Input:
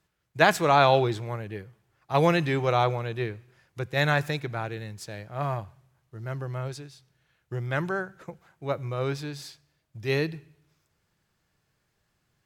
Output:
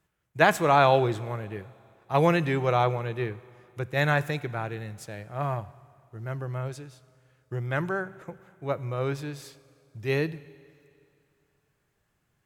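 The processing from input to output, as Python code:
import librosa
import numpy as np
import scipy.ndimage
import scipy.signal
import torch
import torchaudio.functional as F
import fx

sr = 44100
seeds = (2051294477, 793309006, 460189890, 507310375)

y = fx.peak_eq(x, sr, hz=4600.0, db=-7.0, octaves=0.81)
y = fx.rev_schroeder(y, sr, rt60_s=2.5, comb_ms=32, drr_db=19.5)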